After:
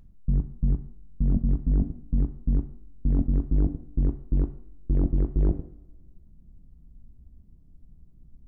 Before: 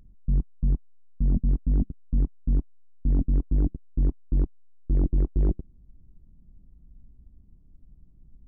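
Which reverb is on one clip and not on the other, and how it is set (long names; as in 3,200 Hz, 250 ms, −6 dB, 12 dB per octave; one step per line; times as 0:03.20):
coupled-rooms reverb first 0.57 s, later 1.9 s, from −21 dB, DRR 8 dB
level +1.5 dB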